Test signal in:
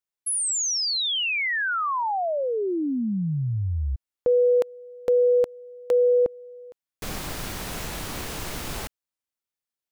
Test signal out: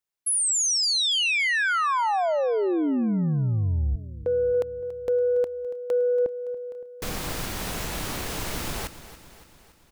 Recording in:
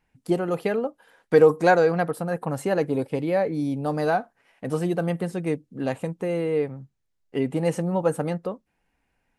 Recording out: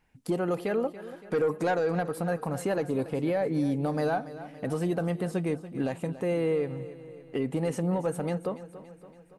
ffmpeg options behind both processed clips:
-af "asoftclip=type=tanh:threshold=0.282,alimiter=limit=0.0794:level=0:latency=1:release=214,aecho=1:1:283|566|849|1132|1415|1698:0.178|0.101|0.0578|0.0329|0.0188|0.0107,volume=1.26"

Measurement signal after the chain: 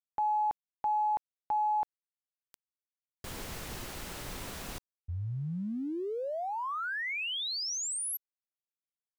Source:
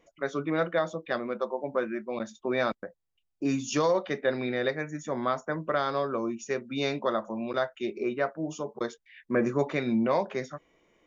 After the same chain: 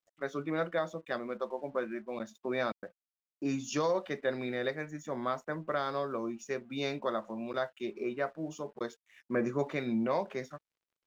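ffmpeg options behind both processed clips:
-af "aeval=exprs='sgn(val(0))*max(abs(val(0))-0.00106,0)':c=same,volume=0.562"

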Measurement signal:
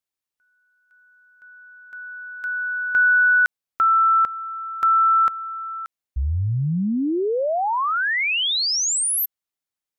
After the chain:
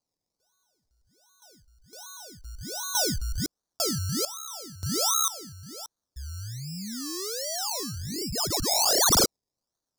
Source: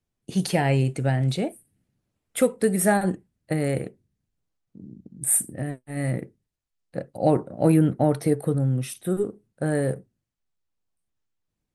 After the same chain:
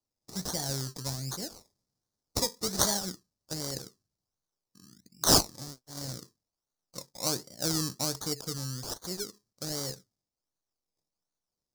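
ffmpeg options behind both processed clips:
-af "crystalizer=i=2.5:c=0,acrusher=samples=24:mix=1:aa=0.000001:lfo=1:lforange=14.4:lforate=1.3,highshelf=f=3700:t=q:w=3:g=11.5,volume=0.178"

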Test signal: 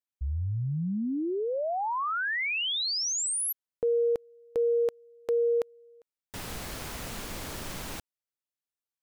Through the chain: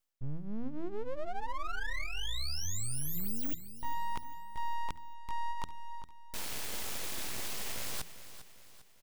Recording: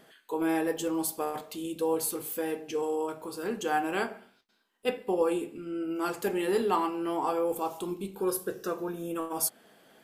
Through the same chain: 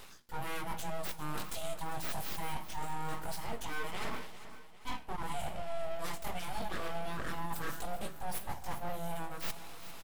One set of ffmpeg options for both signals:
-filter_complex "[0:a]lowshelf=f=260:g=-7.5,flanger=delay=16.5:depth=5:speed=0.24,equalizer=f=1200:t=o:w=0.5:g=-14.5,aeval=exprs='abs(val(0))':c=same,areverse,acompressor=threshold=0.00562:ratio=16:attack=1.2:release=307:knee=1:detection=rms,areverse,bandreject=f=80.3:t=h:w=4,bandreject=f=160.6:t=h:w=4,bandreject=f=240.9:t=h:w=4,bandreject=f=321.2:t=h:w=4,asplit=2[s0][s1];[s1]aecho=0:1:400|800|1200|1600:0.211|0.0972|0.0447|0.0206[s2];[s0][s2]amix=inputs=2:normalize=0,volume=6.31"

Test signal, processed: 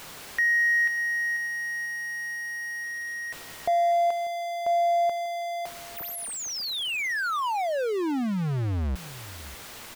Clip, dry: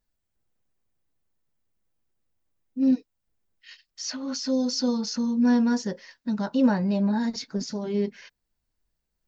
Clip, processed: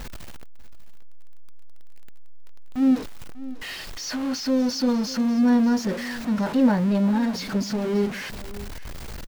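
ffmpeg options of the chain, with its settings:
-filter_complex "[0:a]aeval=exprs='val(0)+0.5*0.0422*sgn(val(0))':c=same,highshelf=f=4500:g=-10,asplit=2[s0][s1];[s1]aecho=0:1:593:0.141[s2];[s0][s2]amix=inputs=2:normalize=0,volume=1.12"

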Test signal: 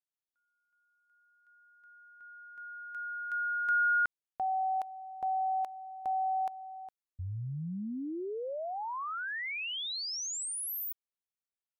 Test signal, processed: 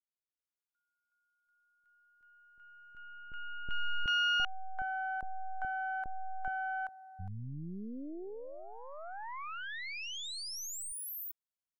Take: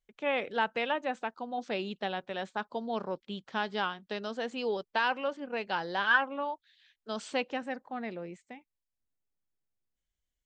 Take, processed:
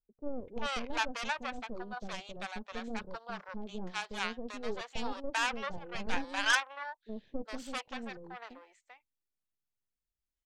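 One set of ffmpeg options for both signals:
-filter_complex "[0:a]aeval=exprs='0.211*(cos(1*acos(clip(val(0)/0.211,-1,1)))-cos(1*PI/2))+0.0596*(cos(6*acos(clip(val(0)/0.211,-1,1)))-cos(6*PI/2))+0.0075*(cos(7*acos(clip(val(0)/0.211,-1,1)))-cos(7*PI/2))':c=same,acrossover=split=600[s0][s1];[s1]adelay=390[s2];[s0][s2]amix=inputs=2:normalize=0,volume=0.708"

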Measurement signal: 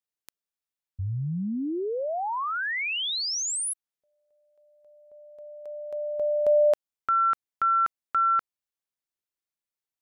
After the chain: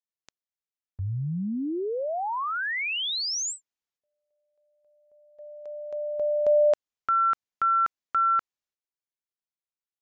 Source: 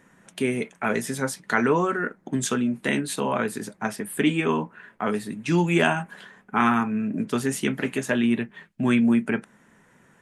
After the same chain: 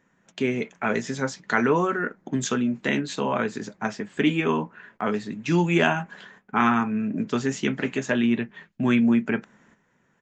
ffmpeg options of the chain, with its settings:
-af "agate=range=0.355:threshold=0.00562:ratio=16:release=253:detection=rms,aresample=16000,aresample=44100"

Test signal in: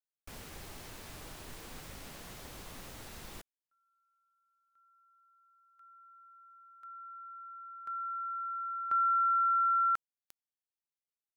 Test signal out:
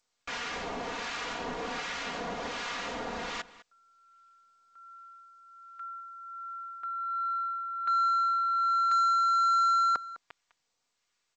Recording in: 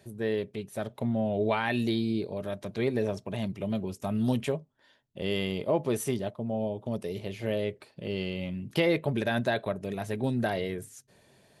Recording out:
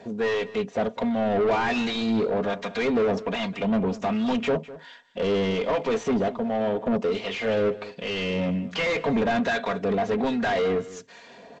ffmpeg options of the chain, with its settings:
-filter_complex "[0:a]equalizer=f=3300:w=0.34:g=3,aecho=1:1:4.2:0.68,acrossover=split=1000[s0][s1];[s0]aeval=exprs='val(0)*(1-0.7/2+0.7/2*cos(2*PI*1.3*n/s))':c=same[s2];[s1]aeval=exprs='val(0)*(1-0.7/2-0.7/2*cos(2*PI*1.3*n/s))':c=same[s3];[s2][s3]amix=inputs=2:normalize=0,asplit=2[s4][s5];[s5]highpass=f=720:p=1,volume=25.1,asoftclip=type=tanh:threshold=0.188[s6];[s4][s6]amix=inputs=2:normalize=0,lowpass=f=1200:p=1,volume=0.501,asplit=2[s7][s8];[s8]adelay=204.1,volume=0.141,highshelf=f=4000:g=-4.59[s9];[s7][s9]amix=inputs=2:normalize=0" -ar 16000 -c:a g722

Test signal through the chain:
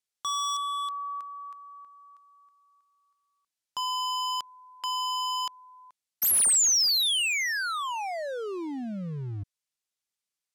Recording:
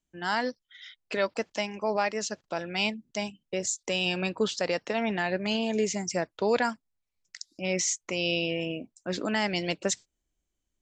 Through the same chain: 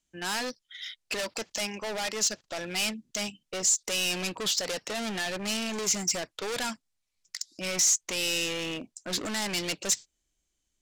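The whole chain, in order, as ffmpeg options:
-af "volume=42.2,asoftclip=hard,volume=0.0237,crystalizer=i=5:c=0,adynamicsmooth=sensitivity=5:basefreq=7200"

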